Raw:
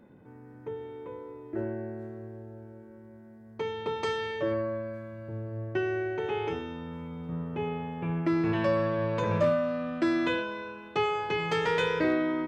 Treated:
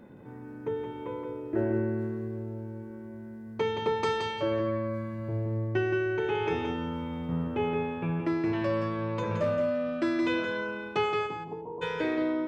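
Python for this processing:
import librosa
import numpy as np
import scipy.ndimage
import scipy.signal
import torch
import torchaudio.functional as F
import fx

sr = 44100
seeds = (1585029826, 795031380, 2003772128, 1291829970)

p1 = fx.rider(x, sr, range_db=5, speed_s=0.5)
p2 = fx.cheby_ripple(p1, sr, hz=1100.0, ripple_db=9, at=(11.26, 11.81), fade=0.02)
y = p2 + fx.echo_feedback(p2, sr, ms=172, feedback_pct=15, wet_db=-5.5, dry=0)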